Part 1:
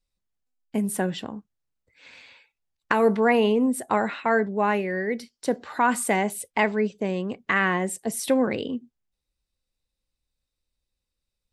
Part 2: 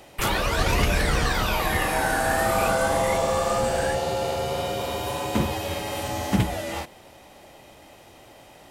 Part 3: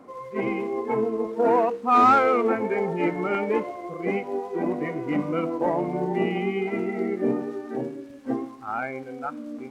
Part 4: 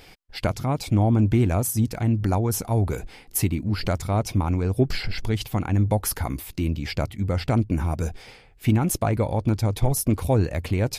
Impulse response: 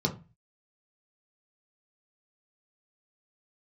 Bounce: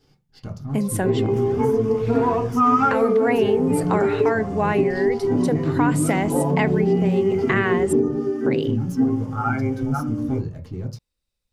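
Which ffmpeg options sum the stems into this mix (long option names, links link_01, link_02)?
-filter_complex "[0:a]volume=2.5dB,asplit=3[link_01][link_02][link_03];[link_01]atrim=end=7.93,asetpts=PTS-STARTPTS,afade=type=out:start_time=7.926:duration=0.004:curve=hsin[link_04];[link_02]atrim=start=7.93:end=8.46,asetpts=PTS-STARTPTS,volume=0[link_05];[link_03]atrim=start=8.46,asetpts=PTS-STARTPTS,afade=type=in:duration=0.004:curve=hsin[link_06];[link_04][link_05][link_06]concat=n=3:v=0:a=1,asplit=2[link_07][link_08];[1:a]highshelf=frequency=7400:gain=-7.5,acompressor=threshold=-29dB:ratio=5,aeval=exprs='0.0708*sin(PI/2*1.58*val(0)/0.0708)':channel_layout=same,adelay=1150,volume=-16.5dB,asplit=2[link_09][link_10];[link_10]volume=-13dB[link_11];[2:a]aecho=1:1:7.2:0.98,adelay=700,volume=1dB,asplit=2[link_12][link_13];[link_13]volume=-10.5dB[link_14];[3:a]aeval=exprs='if(lt(val(0),0),0.447*val(0),val(0))':channel_layout=same,volume=-15dB,asplit=2[link_15][link_16];[link_16]volume=-4.5dB[link_17];[link_08]apad=whole_len=459291[link_18];[link_12][link_18]sidechaincompress=threshold=-25dB:ratio=8:attack=6.1:release=758[link_19];[4:a]atrim=start_sample=2205[link_20];[link_11][link_14][link_17]amix=inputs=3:normalize=0[link_21];[link_21][link_20]afir=irnorm=-1:irlink=0[link_22];[link_07][link_09][link_19][link_15][link_22]amix=inputs=5:normalize=0,acompressor=threshold=-16dB:ratio=3"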